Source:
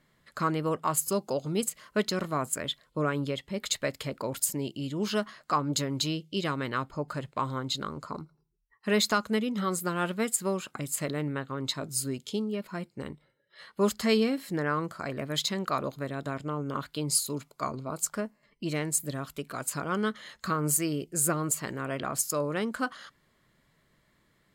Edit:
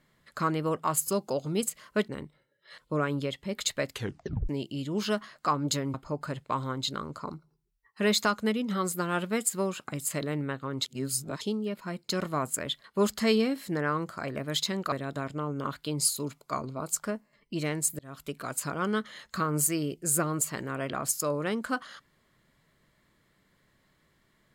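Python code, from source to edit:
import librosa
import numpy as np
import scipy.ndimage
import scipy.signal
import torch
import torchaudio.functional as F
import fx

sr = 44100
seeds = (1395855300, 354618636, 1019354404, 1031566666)

y = fx.edit(x, sr, fx.swap(start_s=2.08, length_s=0.75, other_s=12.96, other_length_s=0.7),
    fx.tape_stop(start_s=3.97, length_s=0.57),
    fx.cut(start_s=5.99, length_s=0.82),
    fx.reverse_span(start_s=11.72, length_s=0.56),
    fx.cut(start_s=15.74, length_s=0.28),
    fx.fade_in_span(start_s=19.09, length_s=0.29), tone=tone)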